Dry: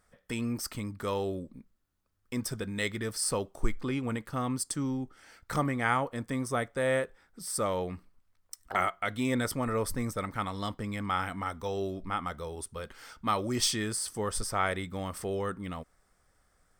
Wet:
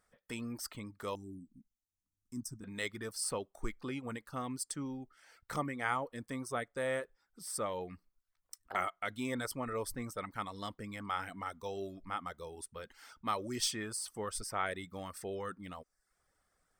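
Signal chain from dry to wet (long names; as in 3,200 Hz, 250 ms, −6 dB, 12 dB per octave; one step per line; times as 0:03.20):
0:01.15–0:02.64: drawn EQ curve 310 Hz 0 dB, 500 Hz −26 dB, 1,000 Hz −14 dB, 3,400 Hz −28 dB, 5,900 Hz +1 dB, 9,700 Hz −2 dB, 15,000 Hz −6 dB
reverb reduction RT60 0.52 s
low-shelf EQ 170 Hz −6.5 dB
level −5.5 dB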